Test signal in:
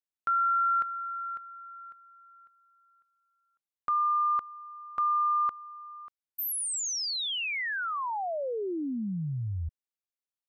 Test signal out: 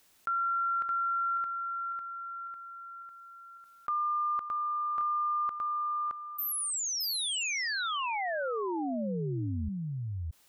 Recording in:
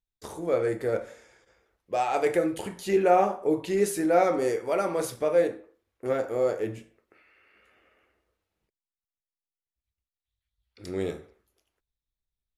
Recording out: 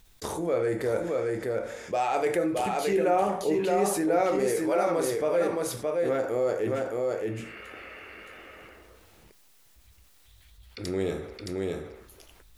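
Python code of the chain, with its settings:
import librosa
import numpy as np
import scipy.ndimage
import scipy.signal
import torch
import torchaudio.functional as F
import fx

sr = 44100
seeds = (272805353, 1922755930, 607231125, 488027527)

y = x + 10.0 ** (-4.5 / 20.0) * np.pad(x, (int(619 * sr / 1000.0), 0))[:len(x)]
y = fx.env_flatten(y, sr, amount_pct=50)
y = y * 10.0 ** (-5.0 / 20.0)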